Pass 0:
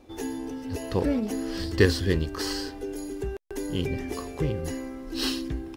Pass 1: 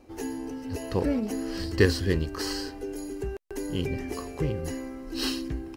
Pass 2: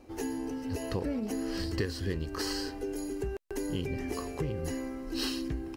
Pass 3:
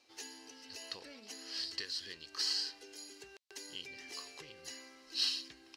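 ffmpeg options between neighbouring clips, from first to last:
ffmpeg -i in.wav -af "bandreject=frequency=3500:width=8.7,volume=-1dB" out.wav
ffmpeg -i in.wav -af "acompressor=threshold=-29dB:ratio=6" out.wav
ffmpeg -i in.wav -af "bandpass=frequency=4300:width_type=q:width=1.8:csg=0,volume=5dB" out.wav

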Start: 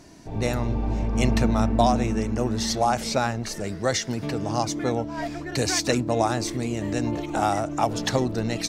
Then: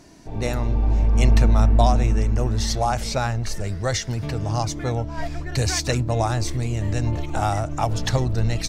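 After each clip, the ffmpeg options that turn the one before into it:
ffmpeg -i in.wav -af "asubboost=boost=9.5:cutoff=84" out.wav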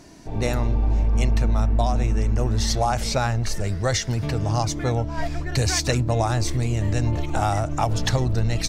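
ffmpeg -i in.wav -af "acompressor=threshold=-18dB:ratio=6,volume=2dB" out.wav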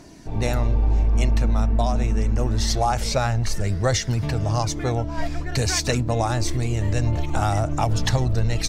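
ffmpeg -i in.wav -af "aphaser=in_gain=1:out_gain=1:delay=4.9:decay=0.23:speed=0.26:type=triangular" out.wav

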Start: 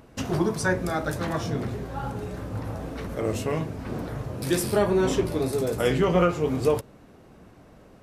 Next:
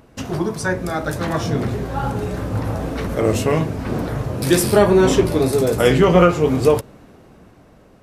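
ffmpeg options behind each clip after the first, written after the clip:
ffmpeg -i in.wav -af "dynaudnorm=framelen=200:gausssize=13:maxgain=8dB,volume=2dB" out.wav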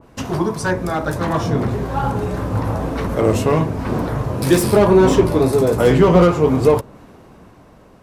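ffmpeg -i in.wav -filter_complex "[0:a]equalizer=frequency=1000:width_type=o:width=0.4:gain=5.5,acrossover=split=540[link_01][link_02];[link_02]asoftclip=type=hard:threshold=-18.5dB[link_03];[link_01][link_03]amix=inputs=2:normalize=0,adynamicequalizer=threshold=0.02:dfrequency=1800:dqfactor=0.7:tfrequency=1800:tqfactor=0.7:attack=5:release=100:ratio=0.375:range=2.5:mode=cutabove:tftype=highshelf,volume=2dB" out.wav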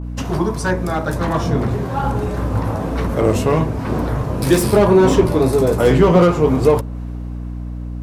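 ffmpeg -i in.wav -af "aeval=exprs='val(0)+0.0562*(sin(2*PI*60*n/s)+sin(2*PI*2*60*n/s)/2+sin(2*PI*3*60*n/s)/3+sin(2*PI*4*60*n/s)/4+sin(2*PI*5*60*n/s)/5)':channel_layout=same" out.wav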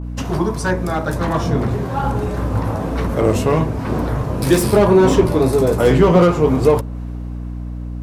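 ffmpeg -i in.wav -af anull out.wav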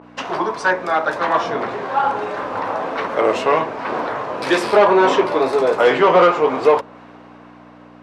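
ffmpeg -i in.wav -af "highpass=640,lowpass=3300,volume=6.5dB" out.wav

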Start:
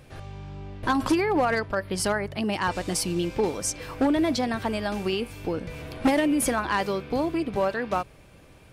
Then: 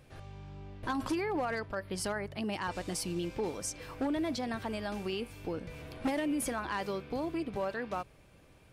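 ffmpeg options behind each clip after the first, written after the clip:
ffmpeg -i in.wav -af "alimiter=limit=-18dB:level=0:latency=1:release=36,volume=-8dB" out.wav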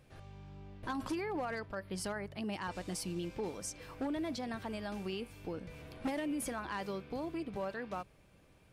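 ffmpeg -i in.wav -af "equalizer=frequency=190:width_type=o:width=0.25:gain=4,volume=-4.5dB" out.wav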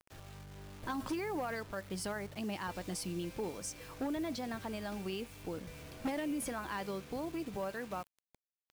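ffmpeg -i in.wav -af "acrusher=bits=8:mix=0:aa=0.000001" out.wav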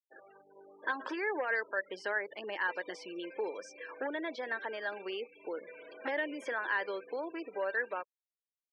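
ffmpeg -i in.wav -filter_complex "[0:a]afftfilt=real='re*gte(hypot(re,im),0.00398)':imag='im*gte(hypot(re,im),0.00398)':win_size=1024:overlap=0.75,highpass=frequency=430:width=0.5412,highpass=frequency=430:width=1.3066,equalizer=frequency=730:width_type=q:width=4:gain=-9,equalizer=frequency=1200:width_type=q:width=4:gain=-7,equalizer=frequency=1700:width_type=q:width=4:gain=9,equalizer=frequency=2500:width_type=q:width=4:gain=-5,equalizer=frequency=4400:width_type=q:width=4:gain=-7,lowpass=frequency=5200:width=0.5412,lowpass=frequency=5200:width=1.3066,acrossover=split=3100[link_01][link_02];[link_02]acompressor=threshold=-59dB:ratio=4:attack=1:release=60[link_03];[link_01][link_03]amix=inputs=2:normalize=0,volume=7.5dB" out.wav

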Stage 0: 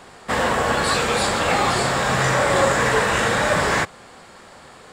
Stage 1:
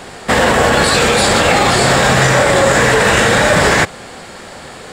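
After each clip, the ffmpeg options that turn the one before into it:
ffmpeg -i in.wav -af "equalizer=frequency=1100:width=2.1:gain=-5,alimiter=level_in=14dB:limit=-1dB:release=50:level=0:latency=1,volume=-1dB" out.wav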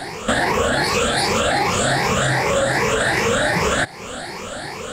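ffmpeg -i in.wav -af "afftfilt=real='re*pow(10,14/40*sin(2*PI*(0.8*log(max(b,1)*sr/1024/100)/log(2)-(2.6)*(pts-256)/sr)))':imag='im*pow(10,14/40*sin(2*PI*(0.8*log(max(b,1)*sr/1024/100)/log(2)-(2.6)*(pts-256)/sr)))':win_size=1024:overlap=0.75,acompressor=threshold=-19dB:ratio=3" out.wav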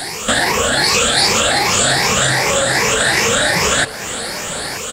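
ffmpeg -i in.wav -filter_complex "[0:a]crystalizer=i=4.5:c=0,acrossover=split=7300[link_01][link_02];[link_02]acompressor=threshold=-29dB:ratio=4:attack=1:release=60[link_03];[link_01][link_03]amix=inputs=2:normalize=0,asplit=2[link_04][link_05];[link_05]adelay=932.9,volume=-12dB,highshelf=frequency=4000:gain=-21[link_06];[link_04][link_06]amix=inputs=2:normalize=0" out.wav

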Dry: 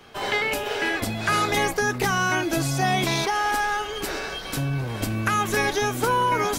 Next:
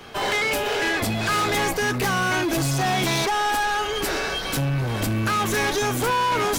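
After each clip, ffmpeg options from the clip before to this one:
ffmpeg -i in.wav -af "asoftclip=type=tanh:threshold=-26.5dB,volume=7dB" out.wav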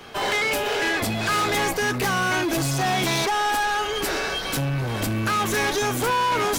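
ffmpeg -i in.wav -af "lowshelf=frequency=160:gain=-3" out.wav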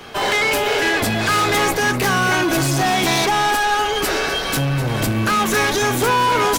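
ffmpeg -i in.wav -filter_complex "[0:a]asplit=2[link_01][link_02];[link_02]adelay=250.7,volume=-9dB,highshelf=frequency=4000:gain=-5.64[link_03];[link_01][link_03]amix=inputs=2:normalize=0,volume=5dB" out.wav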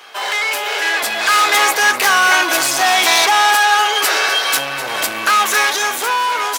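ffmpeg -i in.wav -af "highpass=780,dynaudnorm=framelen=210:gausssize=11:maxgain=11.5dB" out.wav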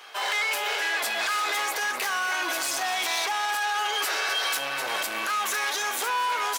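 ffmpeg -i in.wav -filter_complex "[0:a]asplit=2[link_01][link_02];[link_02]asoftclip=type=hard:threshold=-16dB,volume=-10dB[link_03];[link_01][link_03]amix=inputs=2:normalize=0,highpass=frequency=310:poles=1,alimiter=limit=-10dB:level=0:latency=1:release=91,volume=-8.5dB" out.wav

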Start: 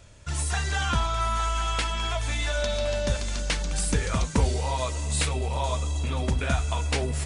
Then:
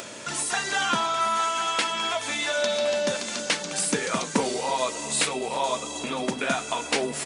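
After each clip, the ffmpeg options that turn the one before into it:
ffmpeg -i in.wav -af "highpass=frequency=210:width=0.5412,highpass=frequency=210:width=1.3066,acompressor=mode=upward:threshold=-31dB:ratio=2.5,aecho=1:1:327:0.0794,volume=4dB" out.wav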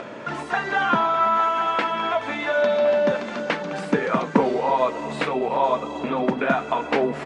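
ffmpeg -i in.wav -af "lowpass=1600,equalizer=frequency=89:width=2.7:gain=-7.5,volume=6.5dB" out.wav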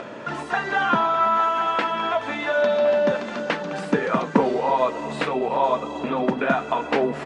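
ffmpeg -i in.wav -af "bandreject=frequency=2200:width=20" out.wav

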